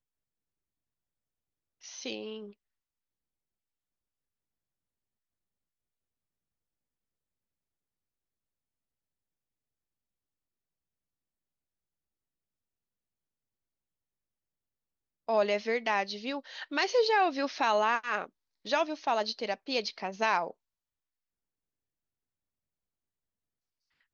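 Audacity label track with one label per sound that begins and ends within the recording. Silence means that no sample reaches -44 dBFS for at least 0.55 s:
1.840000	2.510000	sound
15.290000	20.510000	sound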